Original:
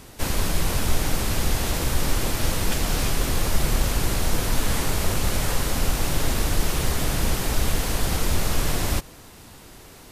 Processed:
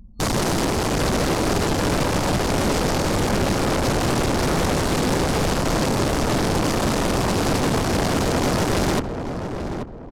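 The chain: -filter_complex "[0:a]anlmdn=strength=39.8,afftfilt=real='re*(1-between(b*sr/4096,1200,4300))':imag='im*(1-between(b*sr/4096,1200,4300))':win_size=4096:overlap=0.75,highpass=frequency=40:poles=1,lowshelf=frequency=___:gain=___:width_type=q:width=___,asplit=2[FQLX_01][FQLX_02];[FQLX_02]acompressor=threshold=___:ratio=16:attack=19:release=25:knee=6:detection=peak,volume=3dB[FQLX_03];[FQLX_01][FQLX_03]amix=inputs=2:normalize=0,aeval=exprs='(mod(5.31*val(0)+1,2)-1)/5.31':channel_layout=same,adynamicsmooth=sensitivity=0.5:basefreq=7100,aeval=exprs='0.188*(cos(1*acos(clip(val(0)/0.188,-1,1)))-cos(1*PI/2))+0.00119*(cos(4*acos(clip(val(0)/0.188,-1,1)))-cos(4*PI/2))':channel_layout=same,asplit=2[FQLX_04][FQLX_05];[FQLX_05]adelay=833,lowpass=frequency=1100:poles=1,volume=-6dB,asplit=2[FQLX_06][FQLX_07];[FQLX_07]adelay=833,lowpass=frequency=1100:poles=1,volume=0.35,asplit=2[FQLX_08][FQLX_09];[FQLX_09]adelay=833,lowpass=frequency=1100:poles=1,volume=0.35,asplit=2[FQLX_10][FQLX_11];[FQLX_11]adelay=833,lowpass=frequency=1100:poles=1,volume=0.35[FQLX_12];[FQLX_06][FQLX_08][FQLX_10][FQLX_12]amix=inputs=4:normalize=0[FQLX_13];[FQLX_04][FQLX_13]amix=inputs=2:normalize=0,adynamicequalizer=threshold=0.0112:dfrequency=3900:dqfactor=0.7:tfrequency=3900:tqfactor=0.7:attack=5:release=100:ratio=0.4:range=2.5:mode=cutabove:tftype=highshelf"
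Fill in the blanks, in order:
300, 7, 3, -30dB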